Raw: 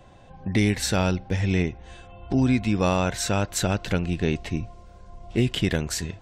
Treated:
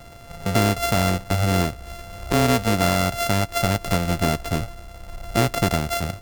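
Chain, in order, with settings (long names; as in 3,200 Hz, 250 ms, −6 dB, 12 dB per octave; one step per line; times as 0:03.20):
samples sorted by size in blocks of 64 samples
downward compressor 1.5 to 1, threshold −32 dBFS, peak gain reduction 6 dB
level +7.5 dB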